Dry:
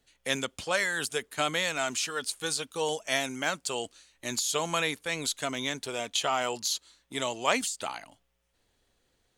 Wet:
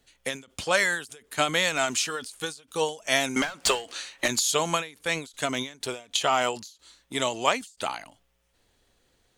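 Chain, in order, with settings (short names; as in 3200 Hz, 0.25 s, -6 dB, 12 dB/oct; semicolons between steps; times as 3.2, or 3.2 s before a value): 3.36–4.28 overdrive pedal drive 25 dB, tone 3000 Hz, clips at -12.5 dBFS; ending taper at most 160 dB/s; gain +5 dB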